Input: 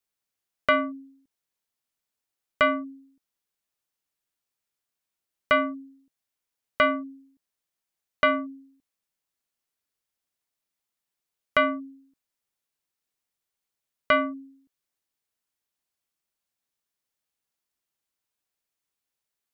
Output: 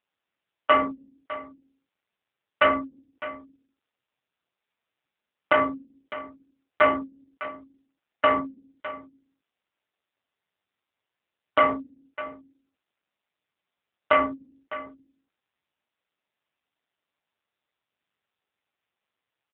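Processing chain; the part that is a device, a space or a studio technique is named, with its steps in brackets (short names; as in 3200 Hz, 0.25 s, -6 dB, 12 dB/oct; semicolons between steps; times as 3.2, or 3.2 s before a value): satellite phone (BPF 310–3400 Hz; echo 0.61 s -15.5 dB; gain +6 dB; AMR-NB 5.9 kbps 8000 Hz)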